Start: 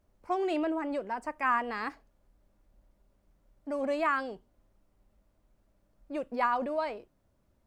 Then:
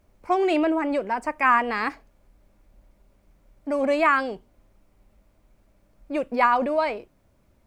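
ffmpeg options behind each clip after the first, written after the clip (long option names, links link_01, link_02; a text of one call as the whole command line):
ffmpeg -i in.wav -af "equalizer=frequency=2300:width=4.7:gain=5.5,volume=8.5dB" out.wav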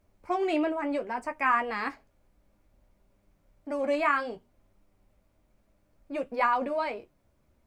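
ffmpeg -i in.wav -af "flanger=delay=9.8:depth=4.5:regen=-39:speed=0.62:shape=triangular,volume=-2dB" out.wav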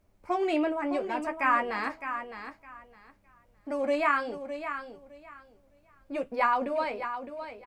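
ffmpeg -i in.wav -af "aecho=1:1:611|1222|1833:0.335|0.067|0.0134" out.wav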